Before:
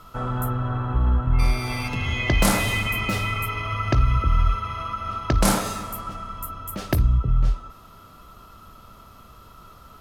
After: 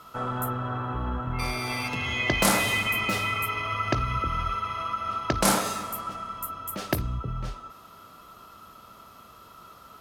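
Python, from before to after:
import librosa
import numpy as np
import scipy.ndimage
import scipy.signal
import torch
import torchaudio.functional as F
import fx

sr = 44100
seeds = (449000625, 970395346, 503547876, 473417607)

y = fx.highpass(x, sr, hz=270.0, slope=6)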